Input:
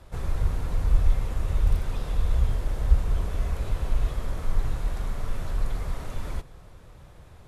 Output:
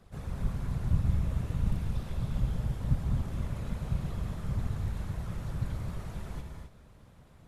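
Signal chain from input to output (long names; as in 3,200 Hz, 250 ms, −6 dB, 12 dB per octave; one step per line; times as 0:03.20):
random phases in short frames
reverb whose tail is shaped and stops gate 290 ms rising, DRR 3.5 dB
level −8.5 dB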